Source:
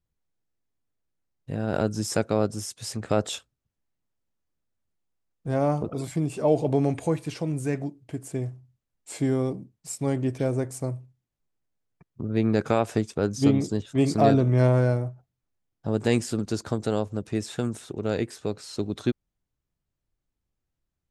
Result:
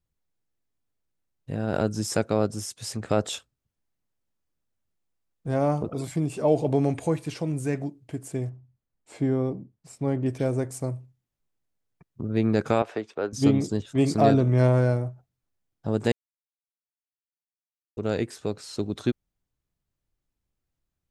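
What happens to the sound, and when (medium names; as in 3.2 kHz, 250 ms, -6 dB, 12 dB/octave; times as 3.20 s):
8.49–10.26 s: low-pass 1.6 kHz 6 dB/octave
12.82–13.33 s: three-band isolator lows -18 dB, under 340 Hz, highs -20 dB, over 3.8 kHz
16.12–17.97 s: mute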